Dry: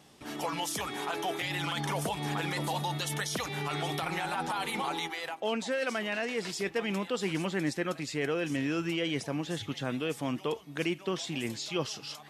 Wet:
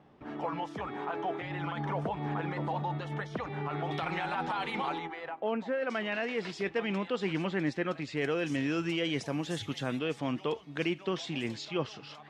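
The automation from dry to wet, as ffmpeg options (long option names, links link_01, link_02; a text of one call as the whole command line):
ffmpeg -i in.wav -af "asetnsamples=nb_out_samples=441:pad=0,asendcmd='3.91 lowpass f 3200;4.98 lowpass f 1600;5.9 lowpass f 3400;8.17 lowpass f 6700;9.26 lowpass f 11000;9.99 lowpass f 4500;11.65 lowpass f 2700',lowpass=1500" out.wav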